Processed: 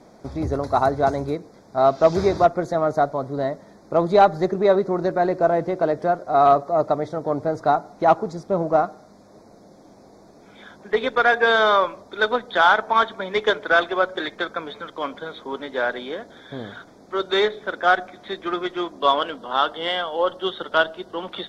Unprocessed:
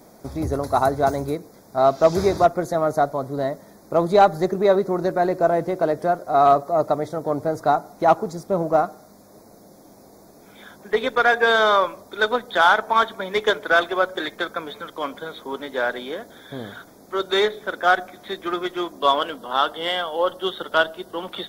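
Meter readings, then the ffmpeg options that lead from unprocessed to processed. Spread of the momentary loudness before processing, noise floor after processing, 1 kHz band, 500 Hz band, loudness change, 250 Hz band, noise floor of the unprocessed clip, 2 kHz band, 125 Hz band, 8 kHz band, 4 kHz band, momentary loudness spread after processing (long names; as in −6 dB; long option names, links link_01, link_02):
14 LU, −49 dBFS, 0.0 dB, 0.0 dB, 0.0 dB, 0.0 dB, −49 dBFS, 0.0 dB, 0.0 dB, can't be measured, −0.5 dB, 14 LU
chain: -af "lowpass=5300"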